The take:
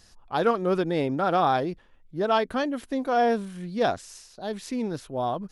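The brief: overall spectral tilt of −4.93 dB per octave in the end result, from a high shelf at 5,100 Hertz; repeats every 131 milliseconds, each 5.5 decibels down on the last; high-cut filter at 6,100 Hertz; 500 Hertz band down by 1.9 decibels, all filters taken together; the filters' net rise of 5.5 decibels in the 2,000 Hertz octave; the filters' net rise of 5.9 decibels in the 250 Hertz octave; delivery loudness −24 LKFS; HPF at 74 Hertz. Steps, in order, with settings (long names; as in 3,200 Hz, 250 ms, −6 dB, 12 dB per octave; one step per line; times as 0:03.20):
high-pass filter 74 Hz
low-pass filter 6,100 Hz
parametric band 250 Hz +8.5 dB
parametric band 500 Hz −5.5 dB
parametric band 2,000 Hz +9 dB
high-shelf EQ 5,100 Hz −7.5 dB
repeating echo 131 ms, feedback 53%, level −5.5 dB
level −0.5 dB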